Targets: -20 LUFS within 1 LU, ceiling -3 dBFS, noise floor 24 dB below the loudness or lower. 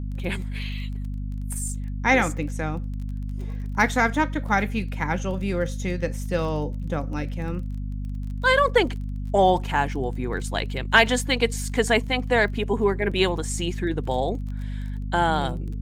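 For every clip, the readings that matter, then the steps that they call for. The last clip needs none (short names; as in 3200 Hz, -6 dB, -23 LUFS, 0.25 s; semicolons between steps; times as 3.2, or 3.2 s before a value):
ticks 23/s; hum 50 Hz; harmonics up to 250 Hz; hum level -27 dBFS; loudness -24.5 LUFS; peak -2.5 dBFS; loudness target -20.0 LUFS
-> de-click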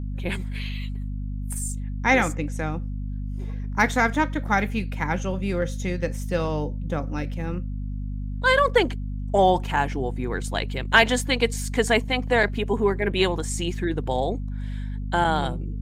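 ticks 0/s; hum 50 Hz; harmonics up to 250 Hz; hum level -27 dBFS
-> de-hum 50 Hz, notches 5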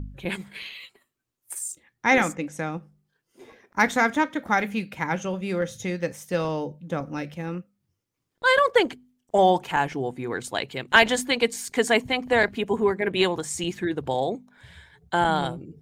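hum none; loudness -24.5 LUFS; peak -3.0 dBFS; loudness target -20.0 LUFS
-> gain +4.5 dB; limiter -3 dBFS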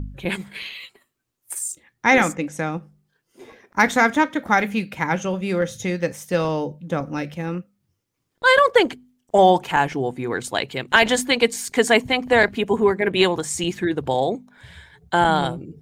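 loudness -20.5 LUFS; peak -3.0 dBFS; noise floor -75 dBFS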